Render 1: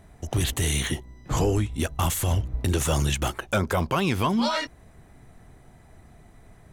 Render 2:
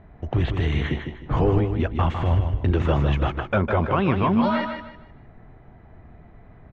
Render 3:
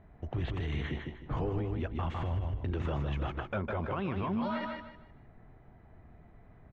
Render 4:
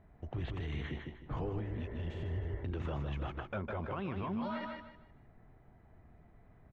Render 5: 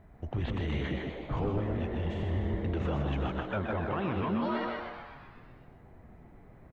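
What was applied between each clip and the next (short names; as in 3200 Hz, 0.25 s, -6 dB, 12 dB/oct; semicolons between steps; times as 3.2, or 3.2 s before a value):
Bessel low-pass 1900 Hz, order 4; feedback echo 0.154 s, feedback 30%, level -6.5 dB; gain +3 dB
limiter -17 dBFS, peak gain reduction 8 dB; gain -8.5 dB
spectral repair 1.63–2.61, 320–2300 Hz after; gain -4.5 dB
frequency-shifting echo 0.125 s, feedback 61%, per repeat +120 Hz, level -8 dB; gain +5.5 dB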